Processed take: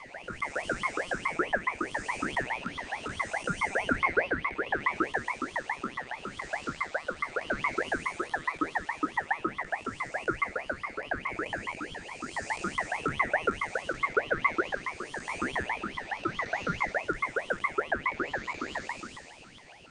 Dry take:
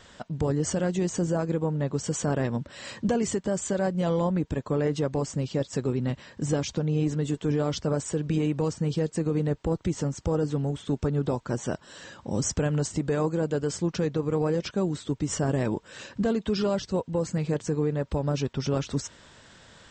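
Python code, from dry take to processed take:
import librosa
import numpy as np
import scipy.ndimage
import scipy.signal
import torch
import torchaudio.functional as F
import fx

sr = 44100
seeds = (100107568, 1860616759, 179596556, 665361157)

y = fx.spec_blur(x, sr, span_ms=485.0)
y = fx.filter_lfo_highpass(y, sr, shape='saw_up', hz=7.2, low_hz=430.0, high_hz=1900.0, q=7.9)
y = fx.ring_lfo(y, sr, carrier_hz=1200.0, swing_pct=35, hz=4.7)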